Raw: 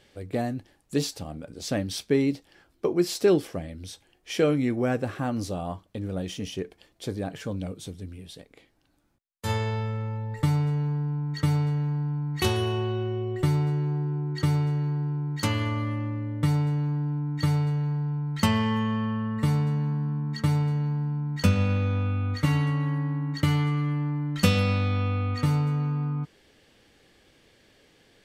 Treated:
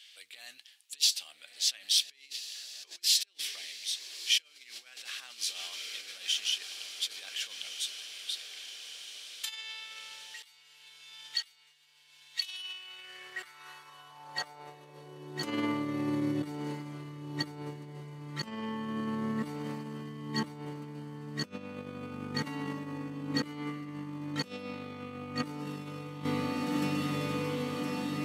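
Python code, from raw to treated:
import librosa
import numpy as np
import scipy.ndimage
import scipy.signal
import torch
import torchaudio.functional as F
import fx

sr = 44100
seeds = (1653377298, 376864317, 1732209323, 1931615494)

y = fx.echo_diffused(x, sr, ms=1374, feedback_pct=70, wet_db=-11)
y = fx.over_compress(y, sr, threshold_db=-30.0, ratio=-0.5)
y = fx.filter_sweep_highpass(y, sr, from_hz=3100.0, to_hz=290.0, start_s=12.61, end_s=15.59, q=2.0)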